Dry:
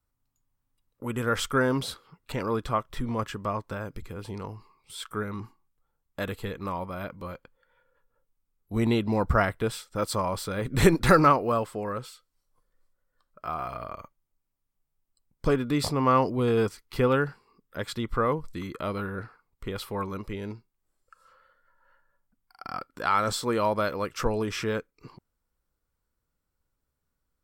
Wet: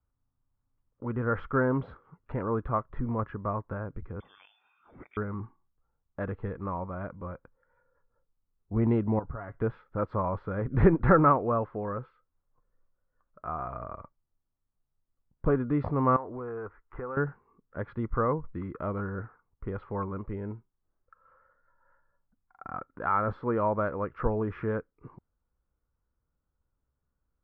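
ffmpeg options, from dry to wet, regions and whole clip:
-filter_complex "[0:a]asettb=1/sr,asplit=3[s0][s1][s2];[s0]atrim=end=4.204[s3];[s1]atrim=start=4.2:end=5.17,asetpts=PTS-STARTPTS,afade=t=in:d=0.004:c=qsin,afade=t=out:st=0.966:d=0.004:c=qsin,acompressor=mode=upward:threshold=0.00794:ratio=2.5:attack=3.2:release=140:knee=2.83:detection=peak,lowpass=f=3100:t=q:w=0.5098,lowpass=f=3100:t=q:w=0.6013,lowpass=f=3100:t=q:w=0.9,lowpass=f=3100:t=q:w=2.563,afreqshift=-3600[s4];[s2]atrim=start=5.166[s5];[s3][s4]acrossfade=d=0.004:c1=hsin:c2=qsin[s6];[s6][s5]acrossfade=d=0.004:c1=qsin:c2=hsin,asettb=1/sr,asplit=3[s7][s8][s9];[s7]atrim=end=9.194[s10];[s8]atrim=start=9.19:end=9.61,asetpts=PTS-STARTPTS,afade=t=in:d=0.004:c=qsin,afade=t=out:st=0.416:d=0.004:c=qsin,aecho=1:1:7.2:0.42,atrim=end_sample=18522,acompressor=threshold=0.0178:ratio=5:attack=3.2:release=140:knee=1:detection=peak[s11];[s9]atrim=start=9.606[s12];[s10][s11]acrossfade=d=0.004:c1=hsin:c2=qsin[s13];[s13][s12]acrossfade=d=0.004:c1=qsin:c2=hsin,asettb=1/sr,asplit=3[s14][s15][s16];[s14]atrim=end=16.164[s17];[s15]atrim=start=16.16:end=17.17,asetpts=PTS-STARTPTS,afade=t=in:d=0.004:c=qsin,afade=t=out:st=1.006:d=0.004:c=qsin,equalizer=f=160:w=0.89:g=-13.5,acompressor=threshold=0.0224:ratio=5:attack=3.2:release=140:knee=1:detection=peak,lowpass=f=1600:t=q:w=1.5[s18];[s16]atrim=start=17.166[s19];[s17][s18]acrossfade=d=0.004:c1=hsin:c2=qsin[s20];[s20][s19]acrossfade=d=0.004:c1=qsin:c2=hsin,lowpass=f=1600:w=0.5412,lowpass=f=1600:w=1.3066,equalizer=f=65:w=0.66:g=5,volume=0.794"

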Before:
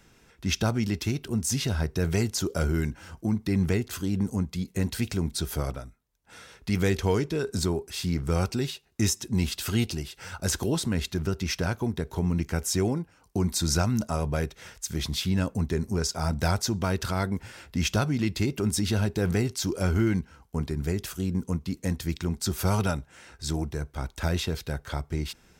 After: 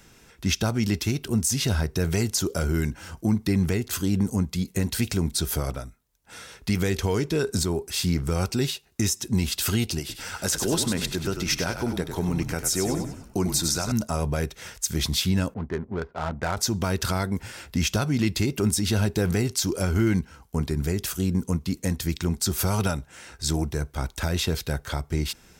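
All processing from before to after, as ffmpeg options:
-filter_complex "[0:a]asettb=1/sr,asplit=3[s0][s1][s2];[s0]atrim=end=9.994[s3];[s1]atrim=start=9.99:end=13.92,asetpts=PTS-STARTPTS,afade=t=in:d=0.004:c=qsin,afade=t=out:st=3.926:d=0.004:c=qsin,highpass=f=200:p=1,asplit=6[s4][s5][s6][s7][s8][s9];[s5]adelay=97,afreqshift=-38,volume=0.422[s10];[s6]adelay=194,afreqshift=-76,volume=0.182[s11];[s7]adelay=291,afreqshift=-114,volume=0.0776[s12];[s8]adelay=388,afreqshift=-152,volume=0.0335[s13];[s9]adelay=485,afreqshift=-190,volume=0.0145[s14];[s4][s10][s11][s12][s13][s14]amix=inputs=6:normalize=0,atrim=end_sample=173313[s15];[s2]atrim=start=13.916[s16];[s3][s15]acrossfade=d=0.004:c1=hsin:c2=qsin[s17];[s17][s16]acrossfade=d=0.004:c1=qsin:c2=hsin,asettb=1/sr,asplit=3[s18][s19][s20];[s18]atrim=end=15.544[s21];[s19]atrim=start=15.54:end=16.57,asetpts=PTS-STARTPTS,afade=t=in:d=0.004:c=qsin,afade=t=out:st=1.026:d=0.004:c=qsin,lowpass=f=2300:w=0.5412,lowpass=f=2300:w=1.3066,lowshelf=f=300:g=-11,adynamicsmooth=sensitivity=7:basefreq=680[s22];[s20]atrim=start=16.566[s23];[s21][s22]acrossfade=d=0.004:c1=hsin:c2=qsin[s24];[s24][s23]acrossfade=d=0.004:c1=qsin:c2=hsin,highshelf=f=5000:g=5.5,alimiter=limit=0.141:level=0:latency=1:release=210,volume=1.58"

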